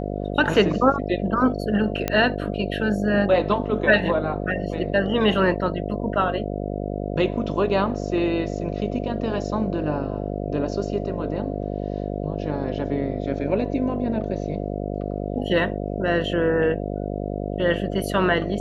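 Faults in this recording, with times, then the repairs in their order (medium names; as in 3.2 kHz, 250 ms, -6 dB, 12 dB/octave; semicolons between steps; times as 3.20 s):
buzz 50 Hz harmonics 14 -28 dBFS
2.08 s: pop -8 dBFS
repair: de-click; de-hum 50 Hz, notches 14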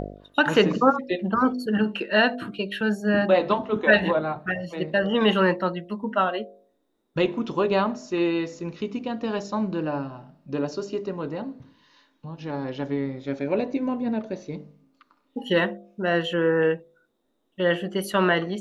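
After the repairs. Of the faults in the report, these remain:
nothing left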